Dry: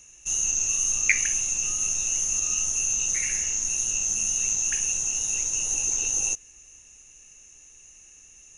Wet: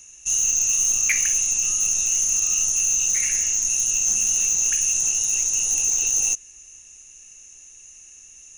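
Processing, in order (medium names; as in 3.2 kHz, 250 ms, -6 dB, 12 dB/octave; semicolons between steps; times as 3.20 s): treble shelf 2.9 kHz +7.5 dB; hard clipper -14 dBFS, distortion -18 dB; 4.07–5.13 s: three bands compressed up and down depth 70%; trim -1 dB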